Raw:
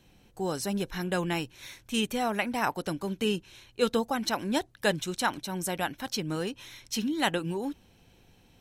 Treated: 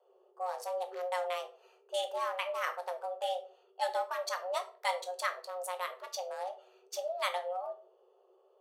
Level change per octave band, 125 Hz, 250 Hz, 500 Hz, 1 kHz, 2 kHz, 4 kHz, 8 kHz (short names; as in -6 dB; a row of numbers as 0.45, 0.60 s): under -40 dB, under -35 dB, -4.0 dB, -2.0 dB, -6.5 dB, -8.0 dB, -9.0 dB